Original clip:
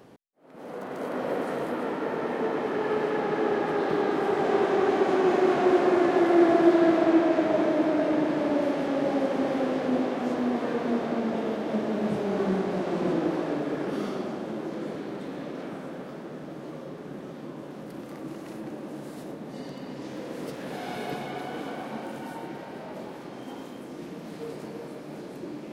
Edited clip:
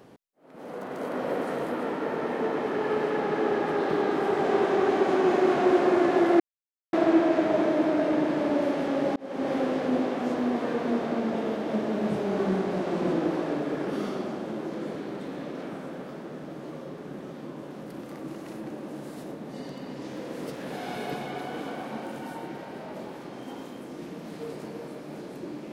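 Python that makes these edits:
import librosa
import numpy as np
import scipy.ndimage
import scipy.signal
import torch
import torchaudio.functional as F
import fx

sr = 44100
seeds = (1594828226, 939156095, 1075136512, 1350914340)

y = fx.edit(x, sr, fx.silence(start_s=6.4, length_s=0.53),
    fx.fade_in_span(start_s=9.16, length_s=0.36), tone=tone)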